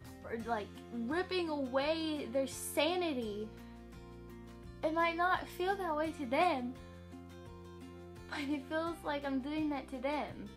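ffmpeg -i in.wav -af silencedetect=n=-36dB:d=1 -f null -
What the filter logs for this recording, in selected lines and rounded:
silence_start: 3.44
silence_end: 4.83 | silence_duration: 1.40
silence_start: 6.69
silence_end: 8.32 | silence_duration: 1.63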